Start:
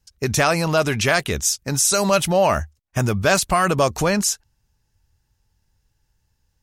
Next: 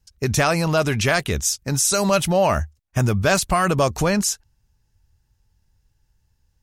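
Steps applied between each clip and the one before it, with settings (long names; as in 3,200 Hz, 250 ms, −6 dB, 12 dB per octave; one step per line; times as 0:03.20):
low-shelf EQ 170 Hz +5.5 dB
level −1.5 dB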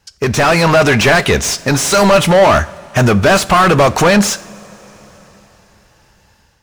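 mid-hump overdrive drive 28 dB, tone 2,200 Hz, clips at −5 dBFS
coupled-rooms reverb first 0.51 s, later 3.7 s, from −15 dB, DRR 14.5 dB
automatic gain control gain up to 7.5 dB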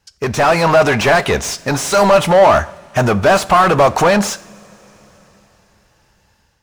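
dynamic equaliser 790 Hz, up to +7 dB, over −24 dBFS, Q 0.91
level −5.5 dB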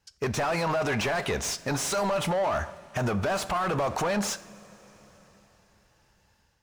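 brickwall limiter −12.5 dBFS, peak gain reduction 11 dB
level −8.5 dB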